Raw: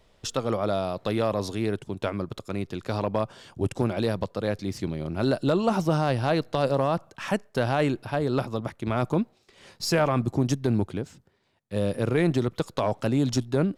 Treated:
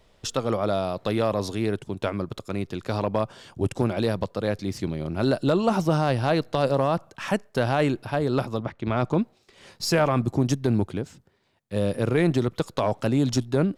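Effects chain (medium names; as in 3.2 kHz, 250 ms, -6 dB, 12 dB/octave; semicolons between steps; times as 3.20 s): 8.62–9.17 s: low-pass 3.4 kHz -> 7.5 kHz 12 dB/octave; trim +1.5 dB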